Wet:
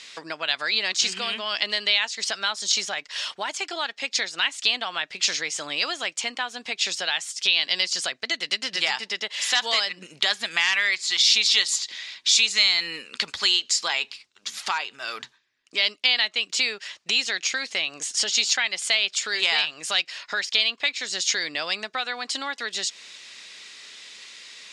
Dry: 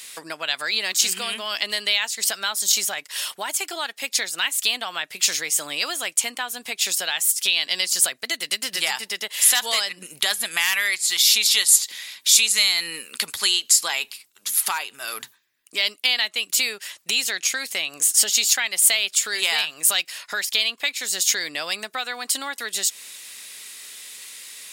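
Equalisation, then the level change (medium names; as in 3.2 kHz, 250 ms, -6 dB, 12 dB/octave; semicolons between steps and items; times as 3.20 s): low-pass 5.9 kHz 24 dB/octave; 0.0 dB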